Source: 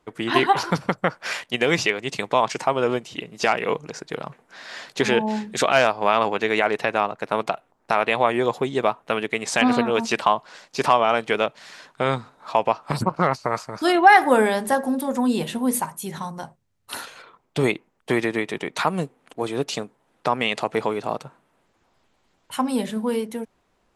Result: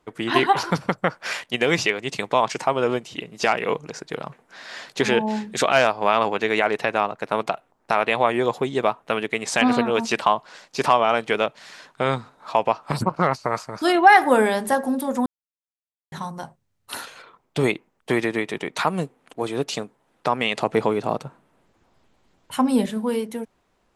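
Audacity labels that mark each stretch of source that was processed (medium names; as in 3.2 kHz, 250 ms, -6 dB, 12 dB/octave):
15.260000	16.120000	mute
20.580000	22.860000	bass shelf 480 Hz +6 dB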